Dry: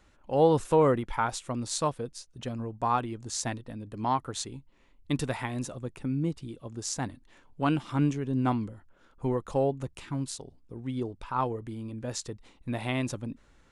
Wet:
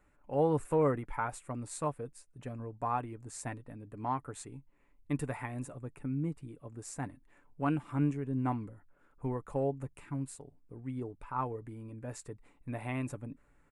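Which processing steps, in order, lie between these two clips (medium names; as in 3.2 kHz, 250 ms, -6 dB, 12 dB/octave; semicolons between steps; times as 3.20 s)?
high-order bell 4.4 kHz -13 dB 1.3 oct; comb 6.9 ms, depth 33%; trim -6.5 dB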